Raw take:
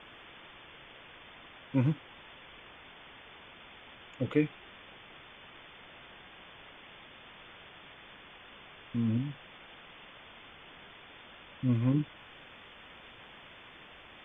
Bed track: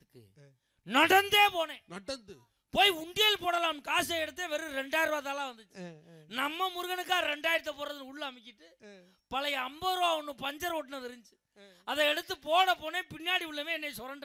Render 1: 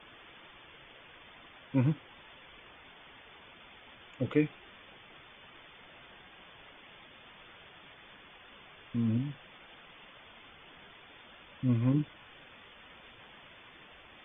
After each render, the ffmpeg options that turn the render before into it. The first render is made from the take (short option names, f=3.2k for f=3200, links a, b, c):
-af "afftdn=nr=6:nf=-53"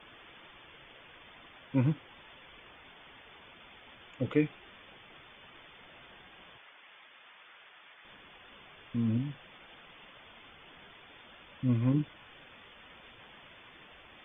-filter_complex "[0:a]asettb=1/sr,asplit=3[a][b][c];[a]atrim=end=6.584[d];[b]atrim=start=6.58:end=8.05,asetpts=PTS-STARTPTS,afade=t=in:d=0.004:c=qsin,afade=t=out:st=1.466:d=0.004:c=qsin,bandpass=f=1.7k:t=q:w=0.68[e];[c]atrim=start=8.046[f];[d][e]acrossfade=d=0.004:c1=hsin:c2=qsin[g];[g][f]acrossfade=d=0.004:c1=qsin:c2=hsin"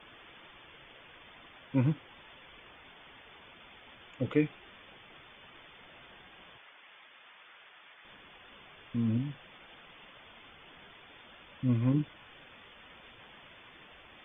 -af anull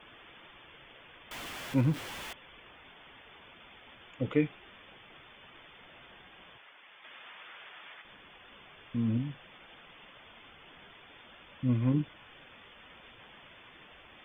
-filter_complex "[0:a]asettb=1/sr,asplit=3[a][b][c];[a]atrim=end=1.314[d];[b]atrim=start=1.31:end=2.33,asetpts=PTS-STARTPTS,afade=t=in:d=0.004:c=qsin,afade=t=out:st=1.016:d=0.004:c=qsin,aeval=exprs='val(0)+0.5*0.0126*sgn(val(0))':c=same[e];[c]atrim=start=2.326[f];[d][e]acrossfade=d=0.004:c1=hsin:c2=qsin[g];[g][f]acrossfade=d=0.004:c1=qsin:c2=hsin,asettb=1/sr,asplit=3[h][i][j];[h]atrim=end=7.044[k];[i]atrim=start=7.04:end=8.02,asetpts=PTS-STARTPTS,afade=t=in:d=0.004:c=qsin,afade=t=out:st=0.976:d=0.004:c=qsin,acontrast=55[l];[j]atrim=start=8.016[m];[k][l]acrossfade=d=0.004:c1=hsin:c2=qsin[n];[n][m]acrossfade=d=0.004:c1=qsin:c2=hsin"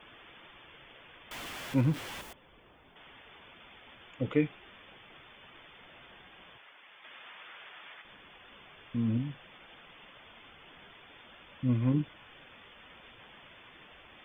-filter_complex "[0:a]asettb=1/sr,asplit=3[a][b][c];[a]atrim=end=2.214[d];[b]atrim=start=2.21:end=2.96,asetpts=PTS-STARTPTS,afade=t=in:d=0.004:c=qsin,afade=t=out:st=0.746:d=0.004:c=qsin,equalizer=f=2.6k:w=0.42:g=-9.5[e];[c]atrim=start=2.956[f];[d][e]acrossfade=d=0.004:c1=hsin:c2=qsin[g];[g][f]acrossfade=d=0.004:c1=qsin:c2=hsin"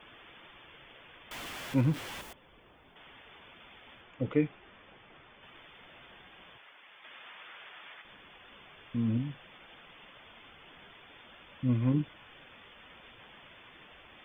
-filter_complex "[0:a]asettb=1/sr,asplit=3[a][b][c];[a]atrim=end=4.014[d];[b]atrim=start=4.01:end=5.43,asetpts=PTS-STARTPTS,afade=t=in:d=0.004:c=qsin,afade=t=out:st=1.416:d=0.004:c=qsin,aemphasis=mode=reproduction:type=75kf[e];[c]atrim=start=5.426[f];[d][e]acrossfade=d=0.004:c1=hsin:c2=qsin[g];[g][f]acrossfade=d=0.004:c1=qsin:c2=hsin"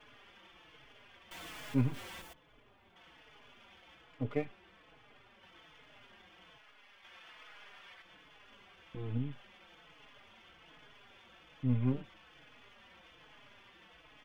-filter_complex "[0:a]aeval=exprs='if(lt(val(0),0),0.447*val(0),val(0))':c=same,asplit=2[a][b];[b]adelay=4.3,afreqshift=-1.2[c];[a][c]amix=inputs=2:normalize=1"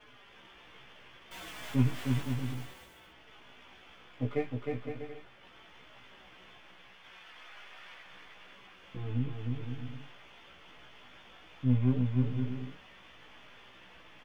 -filter_complex "[0:a]asplit=2[a][b];[b]adelay=16,volume=-2.5dB[c];[a][c]amix=inputs=2:normalize=0,aecho=1:1:310|511.5|642.5|727.6|782.9:0.631|0.398|0.251|0.158|0.1"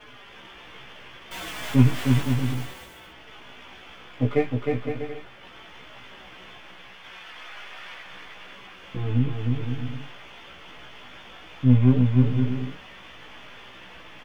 -af "volume=10dB"